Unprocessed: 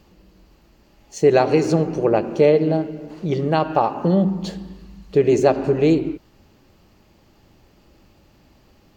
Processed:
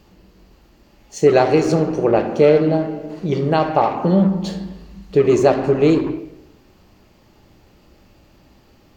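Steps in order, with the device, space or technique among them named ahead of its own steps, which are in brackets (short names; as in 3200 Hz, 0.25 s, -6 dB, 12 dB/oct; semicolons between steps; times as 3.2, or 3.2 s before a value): saturated reverb return (on a send at -4 dB: reverb RT60 0.85 s, pre-delay 16 ms + soft clip -18.5 dBFS, distortion -8 dB); on the sum: gain +1.5 dB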